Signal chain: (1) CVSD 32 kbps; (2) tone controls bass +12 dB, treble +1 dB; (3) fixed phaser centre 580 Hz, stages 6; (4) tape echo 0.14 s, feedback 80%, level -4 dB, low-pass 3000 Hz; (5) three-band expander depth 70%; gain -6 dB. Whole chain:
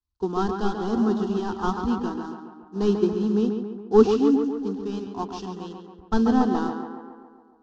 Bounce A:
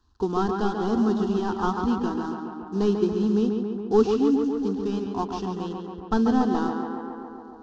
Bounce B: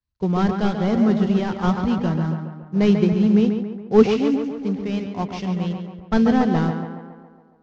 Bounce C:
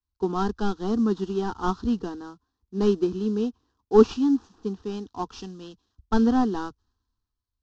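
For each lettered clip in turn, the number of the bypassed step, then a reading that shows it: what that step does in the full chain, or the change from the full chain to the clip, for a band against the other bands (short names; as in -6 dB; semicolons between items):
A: 5, 500 Hz band -1.5 dB; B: 3, crest factor change -2.0 dB; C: 4, loudness change -1.0 LU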